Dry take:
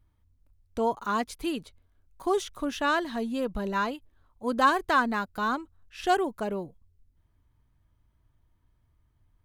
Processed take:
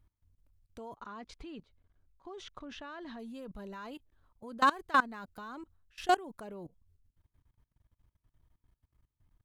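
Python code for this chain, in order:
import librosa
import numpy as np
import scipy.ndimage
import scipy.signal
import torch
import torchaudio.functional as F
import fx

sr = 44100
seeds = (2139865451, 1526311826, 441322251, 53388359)

y = fx.level_steps(x, sr, step_db=22)
y = fx.air_absorb(y, sr, metres=150.0, at=(0.95, 3.18), fade=0.02)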